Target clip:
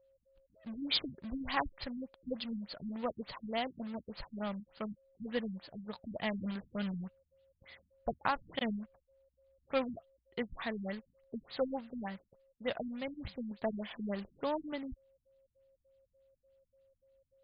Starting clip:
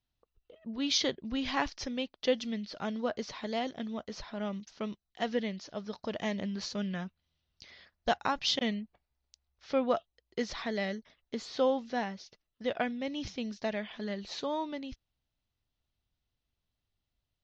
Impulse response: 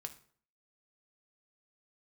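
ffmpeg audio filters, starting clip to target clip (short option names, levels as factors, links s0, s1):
-af "asetnsamples=n=441:p=0,asendcmd='13.51 equalizer g -2',equalizer=f=340:w=1.2:g=-8,acrusher=bits=2:mode=log:mix=0:aa=0.000001,aeval=exprs='val(0)+0.000501*sin(2*PI*540*n/s)':c=same,afftfilt=real='re*lt(b*sr/1024,270*pow(5100/270,0.5+0.5*sin(2*PI*3.4*pts/sr)))':imag='im*lt(b*sr/1024,270*pow(5100/270,0.5+0.5*sin(2*PI*3.4*pts/sr)))':win_size=1024:overlap=0.75"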